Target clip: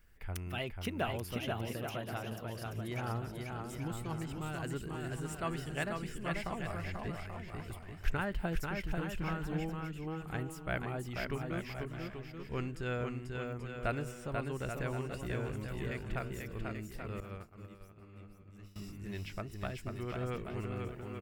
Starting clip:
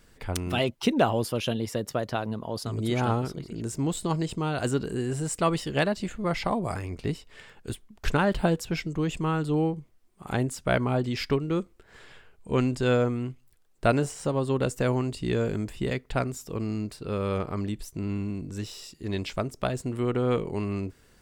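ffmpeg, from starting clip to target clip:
-filter_complex "[0:a]aecho=1:1:490|833|1073|1241|1359:0.631|0.398|0.251|0.158|0.1,asettb=1/sr,asplit=3[a][b][c];[a]atrim=end=17.204[d];[b]atrim=start=17.2:end=18.76,asetpts=PTS-STARTPTS,afade=t=in:d=0.004:c=qsin,afade=t=out:st=1.556:d=0.004:c=qsin,agate=range=-33dB:threshold=-20dB:ratio=3:detection=peak[e];[c]atrim=start=18.756[f];[d][e]acrossfade=d=0.004:c1=hsin:c2=qsin[g];[g][f]acrossfade=d=0.004:c1=qsin:c2=hsin,equalizer=f=125:t=o:w=1:g=-6,equalizer=f=250:t=o:w=1:g=-10,equalizer=f=500:t=o:w=1:g=-9,equalizer=f=1k:t=o:w=1:g=-8,equalizer=f=4k:t=o:w=1:g=-11,equalizer=f=8k:t=o:w=1:g=-11,volume=-3dB"

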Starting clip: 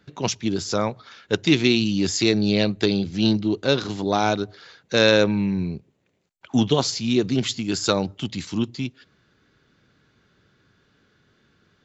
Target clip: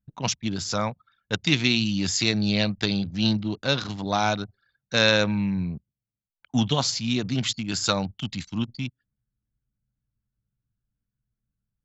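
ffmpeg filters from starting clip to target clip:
-af "anlmdn=3.98,equalizer=f=380:w=1.6:g=-12"

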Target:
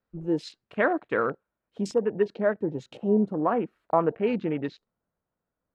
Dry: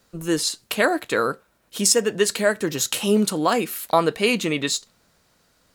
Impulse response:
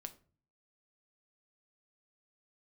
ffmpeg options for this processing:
-af "afwtdn=0.0355,asetnsamples=n=441:p=0,asendcmd='1.91 lowpass f 1200',lowpass=2.1k,volume=-3.5dB"

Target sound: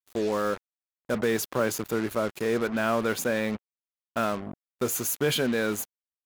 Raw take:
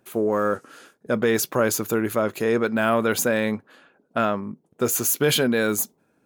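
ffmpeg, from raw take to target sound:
-filter_complex "[0:a]asettb=1/sr,asplit=3[a][b][c];[a]atrim=end=1.144[d];[b]atrim=start=1.14:end=2.12,asetpts=PTS-STARTPTS,afade=t=in:d=0.004:c=qsin,afade=t=out:st=0.976:d=0.004:c=qsin,highpass=f=76:w=0.5412,highpass=f=76:w=1.3066[e];[c]atrim=start=2.116[f];[d][e]acrossfade=d=0.004:c1=hsin:c2=qsin[g];[g][f]acrossfade=d=0.004:c1=qsin:c2=hsin,acrusher=bits=4:mix=0:aa=0.5,adynamicequalizer=threshold=0.0112:dfrequency=5100:dqfactor=0.7:tfrequency=5100:tqfactor=0.7:attack=5:release=100:ratio=0.375:range=2.5:mode=cutabove:tftype=highshelf,volume=-5dB"

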